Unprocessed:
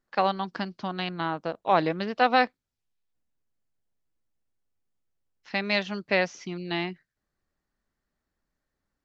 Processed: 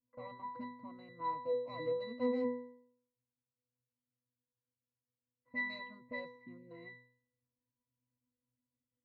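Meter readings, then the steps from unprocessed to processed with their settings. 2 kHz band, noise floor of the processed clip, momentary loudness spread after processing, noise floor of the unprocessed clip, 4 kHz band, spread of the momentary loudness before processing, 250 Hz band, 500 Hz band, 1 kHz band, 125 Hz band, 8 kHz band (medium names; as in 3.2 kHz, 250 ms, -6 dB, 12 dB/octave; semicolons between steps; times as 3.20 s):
-14.5 dB, under -85 dBFS, 17 LU, -85 dBFS, -21.0 dB, 10 LU, -11.0 dB, -9.5 dB, -17.5 dB, -20.5 dB, no reading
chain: overload inside the chain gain 26 dB; pitch-class resonator B, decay 0.64 s; level-controlled noise filter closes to 900 Hz, open at -45 dBFS; trim +11.5 dB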